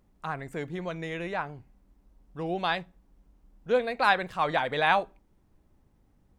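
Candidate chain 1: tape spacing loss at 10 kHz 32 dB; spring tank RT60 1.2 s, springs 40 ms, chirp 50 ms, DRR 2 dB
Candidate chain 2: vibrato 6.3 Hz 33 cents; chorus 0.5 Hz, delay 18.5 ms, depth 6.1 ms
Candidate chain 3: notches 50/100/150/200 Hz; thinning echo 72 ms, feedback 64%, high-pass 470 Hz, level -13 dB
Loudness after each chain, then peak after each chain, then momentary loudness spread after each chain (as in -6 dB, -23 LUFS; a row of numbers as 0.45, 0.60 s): -30.0, -32.0, -29.0 LUFS; -11.5, -10.5, -8.5 dBFS; 16, 14, 14 LU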